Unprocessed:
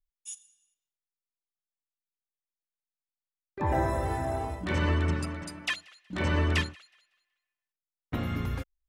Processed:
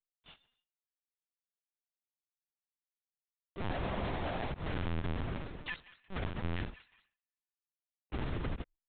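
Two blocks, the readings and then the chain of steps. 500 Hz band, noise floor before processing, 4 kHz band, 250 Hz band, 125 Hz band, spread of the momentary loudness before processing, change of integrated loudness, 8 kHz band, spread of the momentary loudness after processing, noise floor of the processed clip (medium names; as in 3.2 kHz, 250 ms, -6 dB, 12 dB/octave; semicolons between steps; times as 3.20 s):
-8.0 dB, under -85 dBFS, -9.5 dB, -8.0 dB, -9.0 dB, 14 LU, -9.0 dB, under -35 dB, 9 LU, under -85 dBFS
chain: square wave that keeps the level; gate with hold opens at -56 dBFS; peak limiter -25.5 dBFS, peak gain reduction 28.5 dB; LPC vocoder at 8 kHz pitch kept; trim -6.5 dB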